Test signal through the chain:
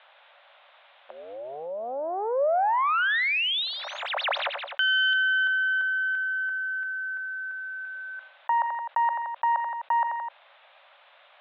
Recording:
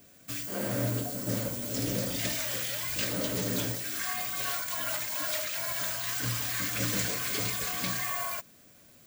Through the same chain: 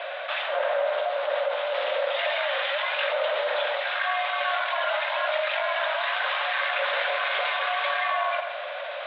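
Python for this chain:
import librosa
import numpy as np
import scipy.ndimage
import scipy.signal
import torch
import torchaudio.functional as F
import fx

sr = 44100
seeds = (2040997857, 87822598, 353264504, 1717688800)

p1 = fx.self_delay(x, sr, depth_ms=0.12)
p2 = fx.tilt_eq(p1, sr, slope=-3.0)
p3 = 10.0 ** (-23.5 / 20.0) * np.tanh(p2 / 10.0 ** (-23.5 / 20.0))
p4 = p2 + (p3 * librosa.db_to_amplitude(-9.5))
p5 = scipy.signal.sosfilt(scipy.signal.cheby1(5, 1.0, [560.0, 3700.0], 'bandpass', fs=sr, output='sos'), p4)
p6 = p5 + fx.echo_feedback(p5, sr, ms=85, feedback_pct=39, wet_db=-18.0, dry=0)
p7 = fx.env_flatten(p6, sr, amount_pct=70)
y = p7 * librosa.db_to_amplitude(7.5)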